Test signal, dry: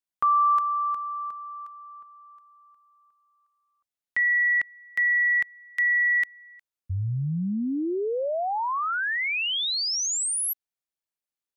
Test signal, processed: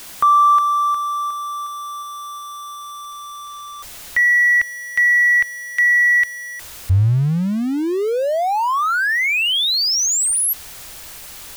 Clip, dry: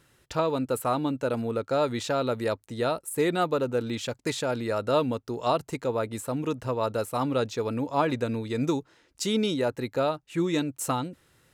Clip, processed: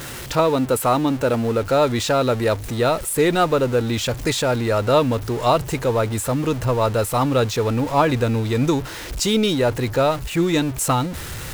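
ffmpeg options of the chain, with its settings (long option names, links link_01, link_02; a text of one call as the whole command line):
ffmpeg -i in.wav -af "aeval=exprs='val(0)+0.5*0.0178*sgn(val(0))':channel_layout=same,asubboost=boost=3:cutoff=110,volume=7.5dB" out.wav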